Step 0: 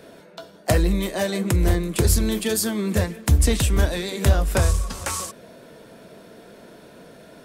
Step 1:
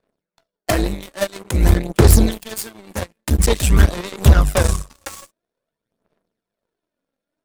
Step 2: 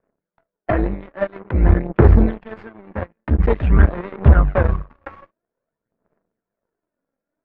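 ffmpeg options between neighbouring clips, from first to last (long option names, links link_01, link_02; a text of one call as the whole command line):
ffmpeg -i in.wav -af "acontrast=88,aphaser=in_gain=1:out_gain=1:delay=3.7:decay=0.54:speed=0.49:type=sinusoidal,aeval=exprs='1.41*(cos(1*acos(clip(val(0)/1.41,-1,1)))-cos(1*PI/2))+0.141*(cos(2*acos(clip(val(0)/1.41,-1,1)))-cos(2*PI/2))+0.2*(cos(7*acos(clip(val(0)/1.41,-1,1)))-cos(7*PI/2))':channel_layout=same,volume=-4.5dB" out.wav
ffmpeg -i in.wav -af "lowpass=frequency=1900:width=0.5412,lowpass=frequency=1900:width=1.3066" out.wav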